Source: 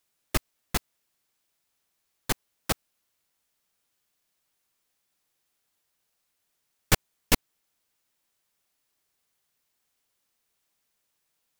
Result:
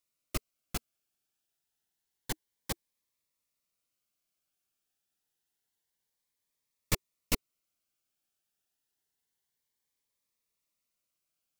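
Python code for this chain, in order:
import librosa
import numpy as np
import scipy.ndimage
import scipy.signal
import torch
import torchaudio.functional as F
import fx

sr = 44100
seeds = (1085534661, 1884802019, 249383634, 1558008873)

y = fx.notch_cascade(x, sr, direction='rising', hz=0.28)
y = y * librosa.db_to_amplitude(-7.5)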